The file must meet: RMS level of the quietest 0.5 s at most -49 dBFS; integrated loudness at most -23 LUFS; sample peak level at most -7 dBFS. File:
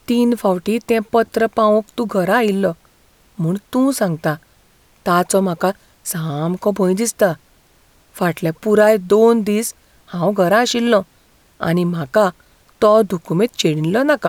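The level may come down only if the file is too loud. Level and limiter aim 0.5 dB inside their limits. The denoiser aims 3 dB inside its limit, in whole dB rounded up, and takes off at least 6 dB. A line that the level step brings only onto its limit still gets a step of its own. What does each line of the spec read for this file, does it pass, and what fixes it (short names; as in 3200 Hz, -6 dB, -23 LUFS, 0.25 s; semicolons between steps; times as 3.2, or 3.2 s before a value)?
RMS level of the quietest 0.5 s -53 dBFS: OK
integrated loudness -17.0 LUFS: fail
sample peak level -2.5 dBFS: fail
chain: gain -6.5 dB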